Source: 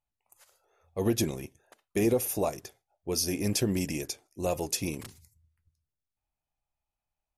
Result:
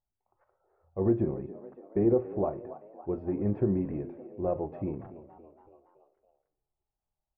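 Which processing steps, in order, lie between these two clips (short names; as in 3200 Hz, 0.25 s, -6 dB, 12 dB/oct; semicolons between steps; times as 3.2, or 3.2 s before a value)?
Bessel low-pass 930 Hz, order 6; frequency-shifting echo 0.282 s, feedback 55%, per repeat +71 Hz, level -16.5 dB; reverb RT60 0.30 s, pre-delay 3 ms, DRR 10 dB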